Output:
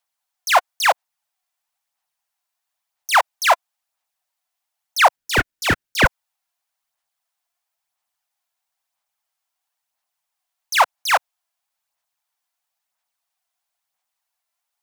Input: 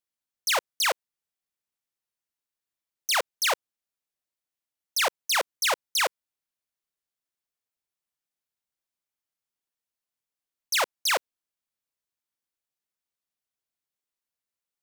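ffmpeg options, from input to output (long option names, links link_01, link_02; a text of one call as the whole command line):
ffmpeg -i in.wav -filter_complex "[0:a]lowshelf=frequency=550:width_type=q:width=3:gain=-10.5,acrossover=split=130|2300[link_01][link_02][link_03];[link_03]alimiter=level_in=1.5dB:limit=-24dB:level=0:latency=1,volume=-1.5dB[link_04];[link_01][link_02][link_04]amix=inputs=3:normalize=0,aphaser=in_gain=1:out_gain=1:delay=3:decay=0.35:speed=1:type=sinusoidal,asettb=1/sr,asplit=3[link_05][link_06][link_07];[link_05]atrim=end=5.164[link_08];[link_06]atrim=start=5.16:end=6.06,asetpts=PTS-STARTPTS,afade=type=in:duration=0.004:curve=qsin,afade=type=out:start_time=0.896:duration=0.004:curve=qsin,aeval=exprs='val(0)*sin(2*PI*740*n/s)':channel_layout=same[link_09];[link_07]atrim=start=6.056[link_10];[link_08][link_09]acrossfade=duration=0.004:curve1=hsin:curve2=qsin[link_11];[link_11][link_10]acrossfade=duration=0.004:curve1=qsin:curve2=hsin,volume=8.5dB" out.wav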